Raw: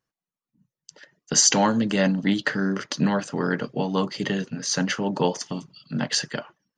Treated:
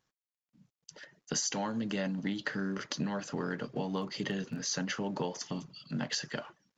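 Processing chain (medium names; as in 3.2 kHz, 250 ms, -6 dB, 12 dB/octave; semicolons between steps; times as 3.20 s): companding laws mixed up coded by mu; resampled via 16 kHz; 3.89–4.58 s: crackle 11 per s -33 dBFS; compression 6:1, threshold -24 dBFS, peak gain reduction 10.5 dB; trim -6.5 dB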